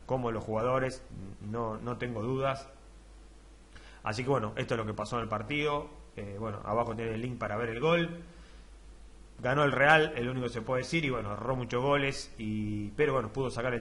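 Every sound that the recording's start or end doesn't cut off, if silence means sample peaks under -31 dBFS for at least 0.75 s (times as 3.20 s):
4.07–8.12 s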